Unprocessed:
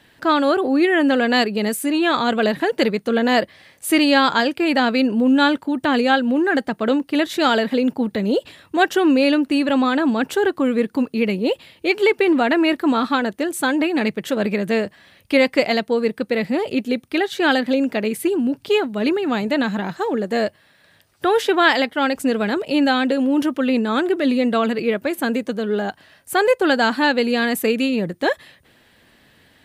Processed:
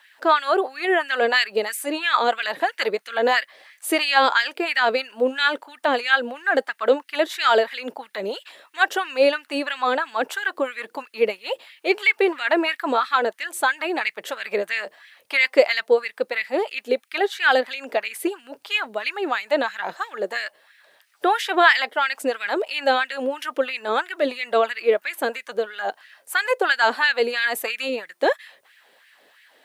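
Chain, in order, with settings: requantised 12-bit, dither triangular; LFO high-pass sine 3 Hz 450–2100 Hz; gain -3 dB

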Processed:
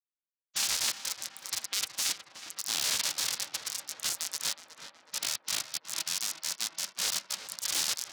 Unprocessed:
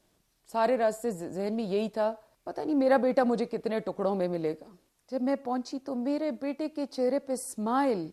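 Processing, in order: spectral delay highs late, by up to 0.11 s; Schmitt trigger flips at -29 dBFS; weighting filter D; ring modulator 200 Hz; half-wave rectifier; spectral gate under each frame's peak -20 dB weak; HPF 74 Hz 6 dB/oct; high shelf 2500 Hz +11 dB; on a send: tape echo 0.37 s, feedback 77%, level -7.5 dB, low-pass 2200 Hz; on the sum: Doppler distortion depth 0.49 ms; gain +4.5 dB

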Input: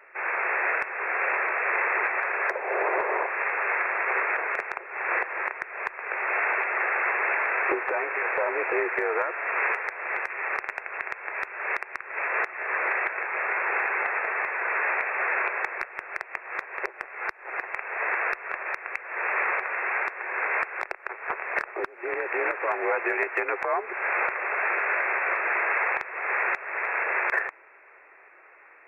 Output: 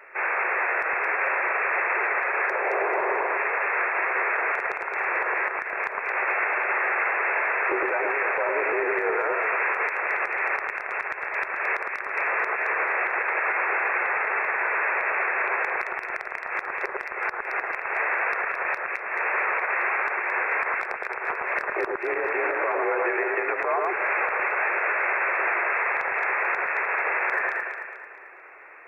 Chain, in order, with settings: 22.17–23.44 LPF 3600 Hz -> 2200 Hz 12 dB/oct; echo with dull and thin repeats by turns 0.11 s, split 1600 Hz, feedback 65%, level -4 dB; limiter -20.5 dBFS, peak gain reduction 8 dB; gain +4.5 dB

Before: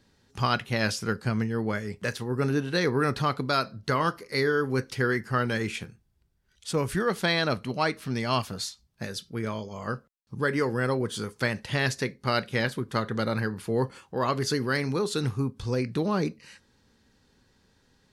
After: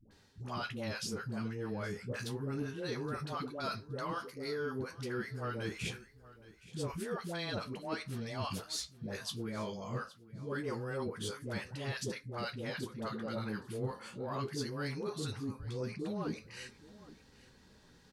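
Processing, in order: dynamic EQ 1900 Hz, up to -5 dB, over -41 dBFS, Q 2.7; reverse; compressor 6:1, threshold -38 dBFS, peak gain reduction 16.5 dB; reverse; dispersion highs, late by 0.11 s, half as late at 570 Hz; flange 0.25 Hz, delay 9.3 ms, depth 7.4 ms, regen -38%; soft clip -31 dBFS, distortion -27 dB; on a send: feedback echo 0.82 s, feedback 19%, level -19 dB; on the sum: gain +6 dB

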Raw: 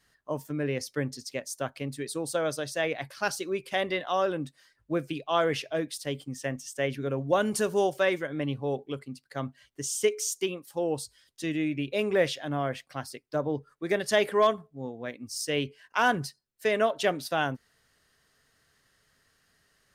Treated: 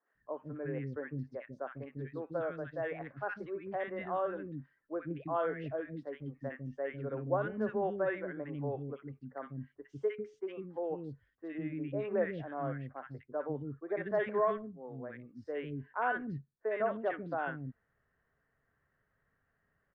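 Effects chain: Chebyshev low-pass 1700 Hz, order 3; three bands offset in time mids, highs, lows 60/150 ms, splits 320/1400 Hz; gain -5 dB

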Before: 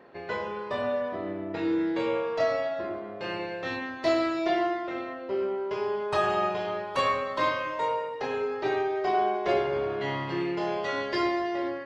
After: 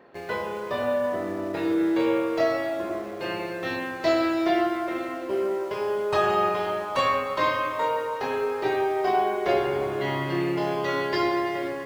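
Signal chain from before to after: in parallel at -10 dB: bit-crush 7-bit; on the sum: dark delay 0.167 s, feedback 73%, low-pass 2400 Hz, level -10.5 dB

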